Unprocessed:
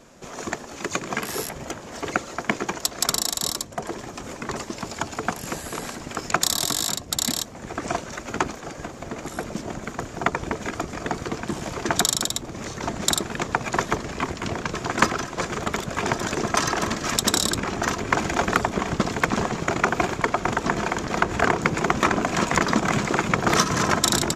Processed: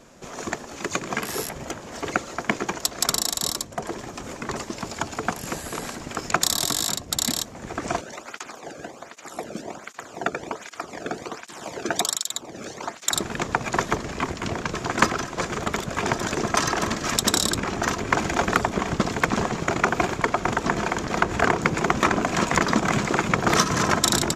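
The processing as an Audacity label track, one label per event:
8.010000	13.140000	through-zero flanger with one copy inverted nulls at 1.3 Hz, depth 1.1 ms

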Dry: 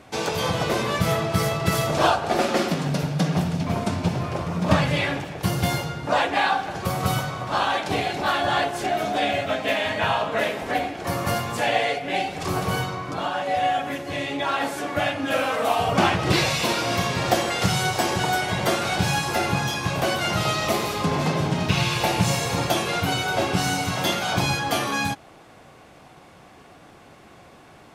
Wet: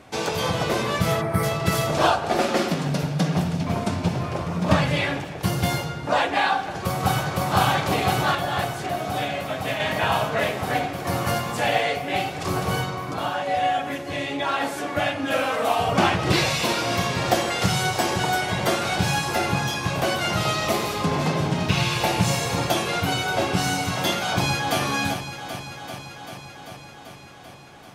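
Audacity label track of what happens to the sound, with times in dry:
1.210000	1.430000	gain on a spectral selection 2,400–8,300 Hz −13 dB
6.550000	7.430000	delay throw 510 ms, feedback 85%, level 0 dB
8.350000	9.800000	clip gain −4.5 dB
24.150000	24.810000	delay throw 390 ms, feedback 75%, level −8.5 dB

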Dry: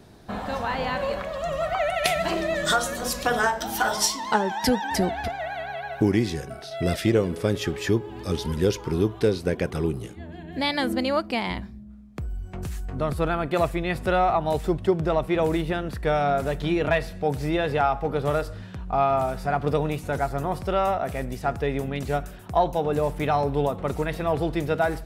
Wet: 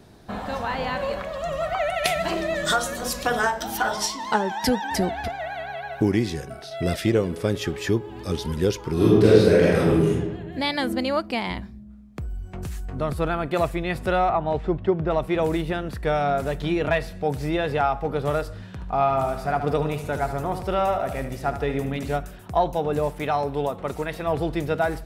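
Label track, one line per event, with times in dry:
3.770000	4.200000	high-shelf EQ 6,600 Hz −9 dB
8.930000	10.130000	thrown reverb, RT60 1.2 s, DRR −8 dB
14.290000	15.110000	low-pass filter 2,700 Hz
18.660000	22.160000	repeating echo 74 ms, feedback 55%, level −10.5 dB
23.090000	24.270000	low-shelf EQ 240 Hz −6.5 dB

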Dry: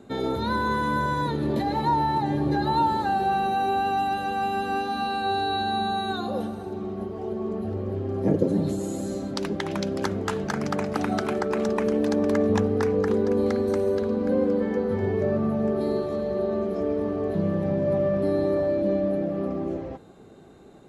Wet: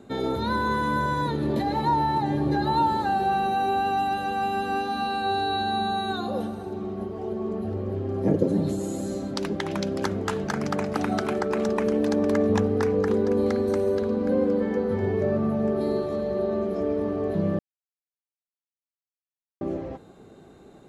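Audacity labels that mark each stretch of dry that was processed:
17.590000	19.610000	silence

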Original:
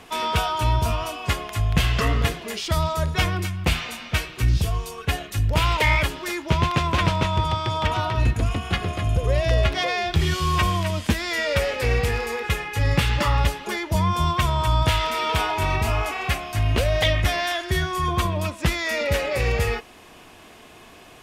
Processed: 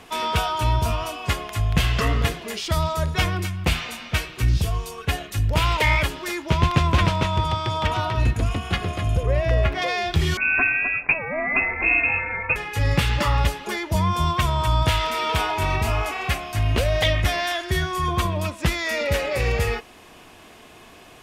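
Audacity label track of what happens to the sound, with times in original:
6.630000	7.050000	low-shelf EQ 170 Hz +7 dB
9.230000	9.820000	flat-topped bell 6,400 Hz −9 dB 2.3 octaves
10.370000	12.560000	voice inversion scrambler carrier 2,600 Hz

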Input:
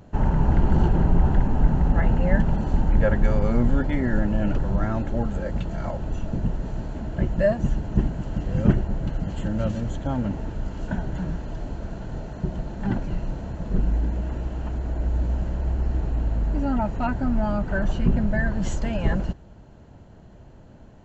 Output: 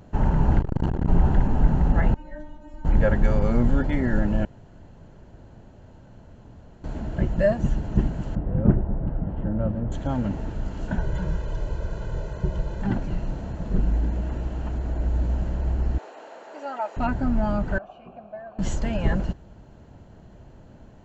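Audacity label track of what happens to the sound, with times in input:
0.590000	1.090000	saturating transformer saturates under 220 Hz
2.140000	2.850000	stiff-string resonator 300 Hz, decay 0.35 s, inharmonicity 0.002
4.450000	6.840000	fill with room tone
8.350000	9.920000	low-pass filter 1,100 Hz
10.980000	12.820000	comb filter 2 ms, depth 69%
15.980000	16.970000	high-pass filter 470 Hz 24 dB per octave
17.780000	18.590000	formant filter a

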